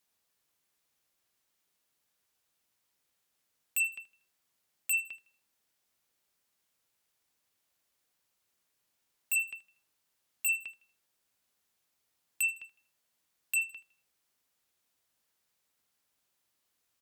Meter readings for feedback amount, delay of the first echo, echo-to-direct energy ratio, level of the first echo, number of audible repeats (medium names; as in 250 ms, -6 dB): 37%, 79 ms, -17.5 dB, -18.0 dB, 2